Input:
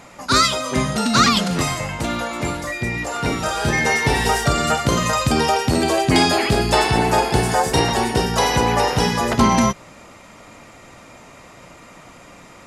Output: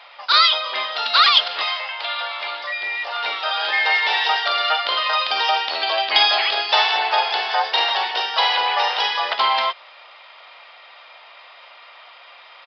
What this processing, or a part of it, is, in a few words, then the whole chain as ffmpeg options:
musical greeting card: -filter_complex "[0:a]asettb=1/sr,asplit=3[a][b][c];[a]atrim=end=1.634[d];[b]atrim=start=1.63:end=2.52,asetpts=PTS-STARTPTS,afade=t=in:d=0.004:c=qsin,afade=t=out:st=0.886:d=0.004:c=qsin,equalizer=f=260:t=o:w=1.6:g=-8[e];[c]atrim=start=2.516[f];[d][e]acrossfade=d=0.004:c1=hsin:c2=qsin[g];[g][f]acrossfade=d=0.004:c1=qsin:c2=hsin,aresample=11025,aresample=44100,highpass=f=680:w=0.5412,highpass=f=680:w=1.3066,equalizer=f=3.3k:t=o:w=0.59:g=9.5"

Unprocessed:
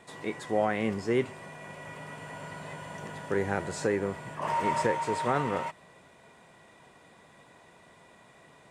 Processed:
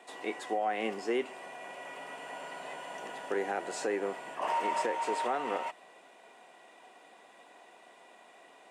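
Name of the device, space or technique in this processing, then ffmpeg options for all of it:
laptop speaker: -af "highpass=f=270:w=0.5412,highpass=f=270:w=1.3066,equalizer=f=740:t=o:w=0.22:g=9,equalizer=f=2.8k:t=o:w=0.3:g=6,alimiter=limit=-20.5dB:level=0:latency=1:release=152,volume=-1.5dB"

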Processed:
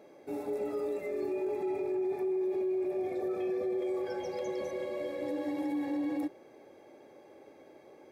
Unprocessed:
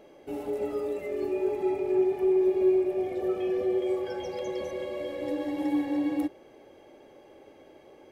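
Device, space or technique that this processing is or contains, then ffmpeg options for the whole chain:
PA system with an anti-feedback notch: -af "highpass=110,asuperstop=centerf=3000:order=4:qfactor=4.9,alimiter=level_in=1dB:limit=-24dB:level=0:latency=1:release=18,volume=-1dB,volume=-2dB"

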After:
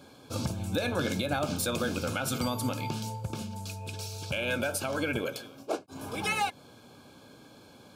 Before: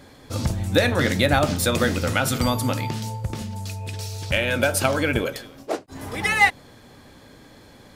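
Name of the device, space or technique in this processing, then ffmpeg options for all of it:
PA system with an anti-feedback notch: -af "highpass=110,asuperstop=centerf=1900:order=20:qfactor=4.6,alimiter=limit=-15dB:level=0:latency=1:release=190,volume=-4.5dB"

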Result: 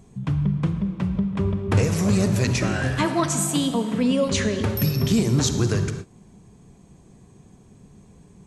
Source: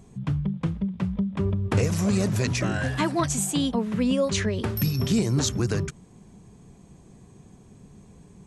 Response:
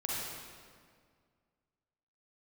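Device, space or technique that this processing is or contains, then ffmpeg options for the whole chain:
keyed gated reverb: -filter_complex "[0:a]asplit=3[a][b][c];[1:a]atrim=start_sample=2205[d];[b][d]afir=irnorm=-1:irlink=0[e];[c]apad=whole_len=373476[f];[e][f]sidechaingate=range=-33dB:threshold=-43dB:ratio=16:detection=peak,volume=-9dB[g];[a][g]amix=inputs=2:normalize=0,asettb=1/sr,asplit=3[h][i][j];[h]atrim=end=3.054[k];[i]atrim=start=3.05:end=4.28,asetpts=PTS-STARTPTS,afade=t=in:d=0.004:c=qsin,afade=t=out:st=1.226:d=0.004:c=qsin,highpass=140[l];[j]atrim=start=4.276[m];[k][l]acrossfade=d=0.004:c1=hsin:c2=qsin[n];[n][m]acrossfade=d=0.004:c1=qsin:c2=hsin"

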